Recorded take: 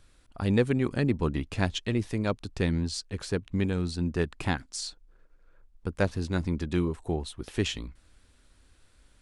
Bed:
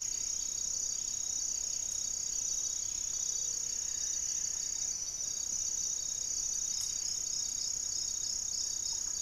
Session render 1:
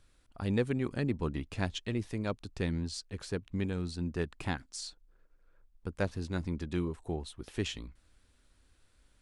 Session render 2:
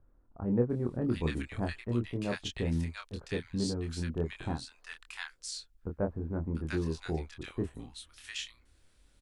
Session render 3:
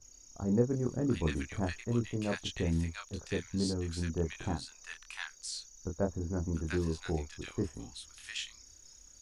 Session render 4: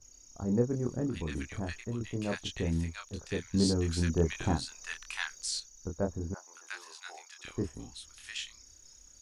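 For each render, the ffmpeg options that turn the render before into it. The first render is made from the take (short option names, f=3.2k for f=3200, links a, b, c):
-af "volume=-6dB"
-filter_complex "[0:a]asplit=2[a][b];[b]adelay=25,volume=-4.5dB[c];[a][c]amix=inputs=2:normalize=0,acrossover=split=1200[d][e];[e]adelay=700[f];[d][f]amix=inputs=2:normalize=0"
-filter_complex "[1:a]volume=-21dB[a];[0:a][a]amix=inputs=2:normalize=0"
-filter_complex "[0:a]asettb=1/sr,asplit=3[a][b][c];[a]atrim=end=1.064[d];[b]atrim=start=1.06:end=2.01,asetpts=PTS-STARTPTS,afade=t=in:d=0.004:c=qsin,afade=t=out:st=0.946:d=0.004:c=qsin,acompressor=threshold=-30dB:ratio=6:attack=3.2:release=140:knee=1:detection=peak[e];[c]atrim=start=2.006[f];[d][e]acrossfade=d=0.004:c1=hsin:c2=qsin[g];[g][f]acrossfade=d=0.004:c1=qsin:c2=hsin,asettb=1/sr,asplit=3[h][i][j];[h]atrim=end=3.544[k];[i]atrim=start=3.54:end=5.6,asetpts=PTS-STARTPTS,afade=t=in:d=0.004:c=qsin,afade=t=out:st=2.056:d=0.004:c=qsin,acontrast=37[l];[j]atrim=start=5.596[m];[k][l]acrossfade=d=0.004:c1=hsin:c2=qsin[n];[n][m]acrossfade=d=0.004:c1=qsin:c2=hsin,asettb=1/sr,asplit=3[o][p][q];[o]atrim=end=6.344[r];[p]atrim=start=6.34:end=7.45,asetpts=PTS-STARTPTS,afade=t=in:d=0.004:c=qsin,afade=t=out:st=1.106:d=0.004:c=qsin,highpass=f=780:w=0.5412,highpass=f=780:w=1.3066[s];[q]atrim=start=7.446[t];[r][s]acrossfade=d=0.004:c1=hsin:c2=qsin[u];[u][t]acrossfade=d=0.004:c1=qsin:c2=hsin"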